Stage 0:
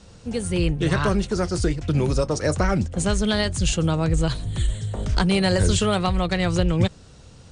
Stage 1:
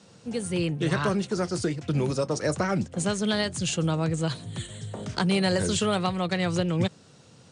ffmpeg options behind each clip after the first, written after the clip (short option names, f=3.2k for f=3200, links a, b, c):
-af "highpass=f=120:w=0.5412,highpass=f=120:w=1.3066,volume=-3.5dB"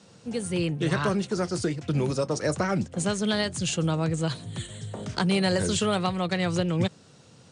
-af anull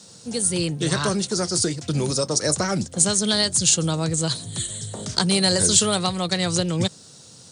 -af "aexciter=amount=4.6:drive=3.9:freq=3.7k,volume=2dB"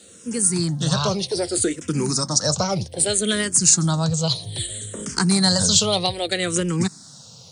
-filter_complex "[0:a]asplit=2[a][b];[b]afreqshift=-0.63[c];[a][c]amix=inputs=2:normalize=1,volume=4dB"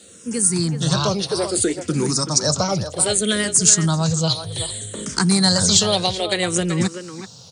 -filter_complex "[0:a]asplit=2[a][b];[b]adelay=380,highpass=300,lowpass=3.4k,asoftclip=type=hard:threshold=-10.5dB,volume=-8dB[c];[a][c]amix=inputs=2:normalize=0,volume=1.5dB"